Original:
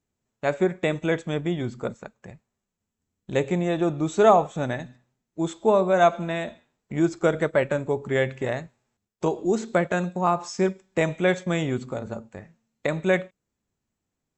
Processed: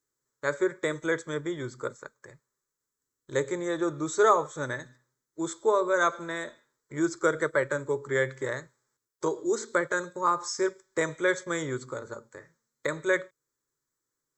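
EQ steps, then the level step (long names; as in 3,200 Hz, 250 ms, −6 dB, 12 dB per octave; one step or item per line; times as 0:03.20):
tilt shelving filter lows −5.5 dB, about 860 Hz
low shelf with overshoot 110 Hz −6.5 dB, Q 3
phaser with its sweep stopped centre 730 Hz, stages 6
0.0 dB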